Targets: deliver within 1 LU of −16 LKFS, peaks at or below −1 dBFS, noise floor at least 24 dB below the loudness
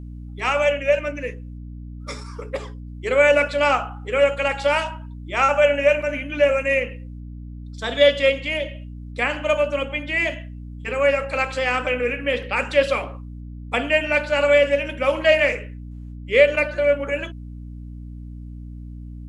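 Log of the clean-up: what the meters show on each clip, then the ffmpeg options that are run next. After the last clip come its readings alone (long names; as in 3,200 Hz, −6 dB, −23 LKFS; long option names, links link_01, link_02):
mains hum 60 Hz; hum harmonics up to 300 Hz; level of the hum −33 dBFS; integrated loudness −20.0 LKFS; sample peak −2.0 dBFS; target loudness −16.0 LKFS
→ -af "bandreject=frequency=60:width_type=h:width=6,bandreject=frequency=120:width_type=h:width=6,bandreject=frequency=180:width_type=h:width=6,bandreject=frequency=240:width_type=h:width=6,bandreject=frequency=300:width_type=h:width=6"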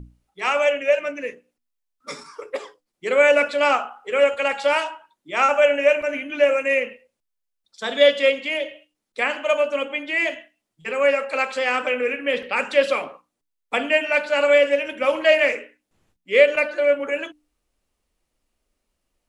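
mains hum none found; integrated loudness −20.0 LKFS; sample peak −2.0 dBFS; target loudness −16.0 LKFS
→ -af "volume=4dB,alimiter=limit=-1dB:level=0:latency=1"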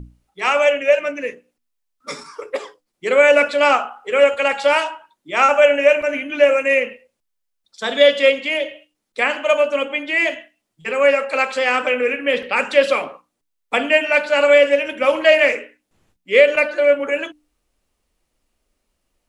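integrated loudness −16.5 LKFS; sample peak −1.0 dBFS; background noise floor −75 dBFS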